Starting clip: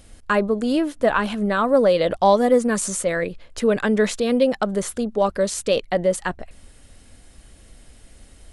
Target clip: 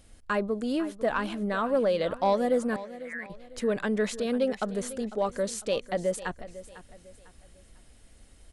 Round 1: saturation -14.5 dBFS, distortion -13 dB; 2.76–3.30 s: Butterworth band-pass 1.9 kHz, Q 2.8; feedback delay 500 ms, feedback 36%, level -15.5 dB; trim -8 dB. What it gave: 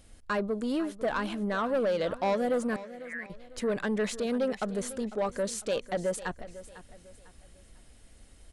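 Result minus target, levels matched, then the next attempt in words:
saturation: distortion +12 dB
saturation -5.5 dBFS, distortion -26 dB; 2.76–3.30 s: Butterworth band-pass 1.9 kHz, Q 2.8; feedback delay 500 ms, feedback 36%, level -15.5 dB; trim -8 dB

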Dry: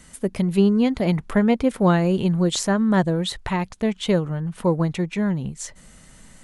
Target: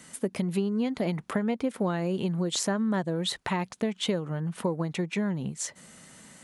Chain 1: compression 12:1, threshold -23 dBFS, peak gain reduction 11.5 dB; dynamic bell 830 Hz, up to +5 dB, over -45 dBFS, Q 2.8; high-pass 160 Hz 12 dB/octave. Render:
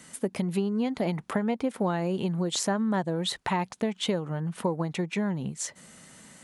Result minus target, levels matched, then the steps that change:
1 kHz band +3.0 dB
remove: dynamic bell 830 Hz, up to +5 dB, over -45 dBFS, Q 2.8

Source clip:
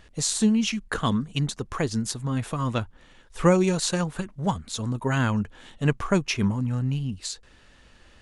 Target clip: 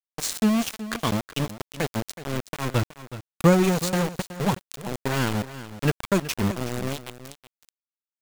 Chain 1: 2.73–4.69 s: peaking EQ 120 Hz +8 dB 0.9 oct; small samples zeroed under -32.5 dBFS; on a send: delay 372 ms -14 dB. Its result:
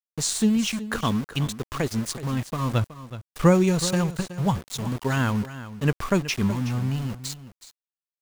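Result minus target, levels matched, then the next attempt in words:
small samples zeroed: distortion -13 dB
2.73–4.69 s: peaking EQ 120 Hz +8 dB 0.9 oct; small samples zeroed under -22 dBFS; on a send: delay 372 ms -14 dB

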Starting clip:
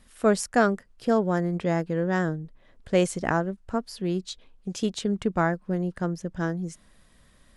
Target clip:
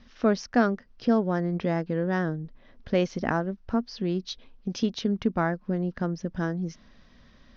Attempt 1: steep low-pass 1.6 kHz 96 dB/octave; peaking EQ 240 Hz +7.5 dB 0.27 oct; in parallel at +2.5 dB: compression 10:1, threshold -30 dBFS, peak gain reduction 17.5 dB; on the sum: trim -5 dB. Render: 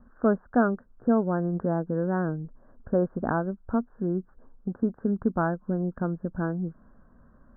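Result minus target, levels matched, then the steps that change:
2 kHz band -3.0 dB
change: steep low-pass 6.1 kHz 96 dB/octave

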